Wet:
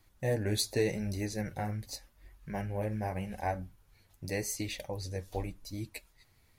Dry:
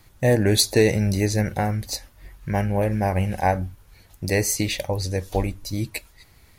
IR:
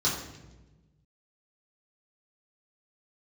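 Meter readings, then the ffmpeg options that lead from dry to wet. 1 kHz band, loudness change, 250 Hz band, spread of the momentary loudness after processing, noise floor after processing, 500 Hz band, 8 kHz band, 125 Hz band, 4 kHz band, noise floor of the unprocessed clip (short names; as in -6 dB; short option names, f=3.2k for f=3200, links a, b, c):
-12.5 dB, -13.0 dB, -13.0 dB, 13 LU, -67 dBFS, -12.5 dB, -13.0 dB, -13.0 dB, -13.0 dB, -54 dBFS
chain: -af "flanger=delay=2.6:depth=7:regen=-38:speed=0.86:shape=triangular,volume=-9dB"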